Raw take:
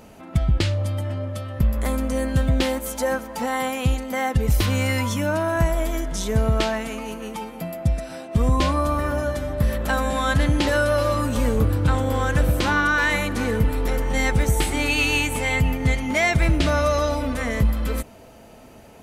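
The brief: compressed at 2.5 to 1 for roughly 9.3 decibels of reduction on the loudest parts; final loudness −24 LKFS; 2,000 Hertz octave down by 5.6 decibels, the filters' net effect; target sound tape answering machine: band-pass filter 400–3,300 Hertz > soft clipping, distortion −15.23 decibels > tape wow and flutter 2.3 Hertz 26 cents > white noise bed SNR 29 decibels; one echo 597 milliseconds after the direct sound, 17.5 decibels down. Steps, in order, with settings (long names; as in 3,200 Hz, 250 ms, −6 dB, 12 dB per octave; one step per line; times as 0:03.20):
parametric band 2,000 Hz −7 dB
downward compressor 2.5 to 1, threshold −29 dBFS
band-pass filter 400–3,300 Hz
single-tap delay 597 ms −17.5 dB
soft clipping −28.5 dBFS
tape wow and flutter 2.3 Hz 26 cents
white noise bed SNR 29 dB
level +13 dB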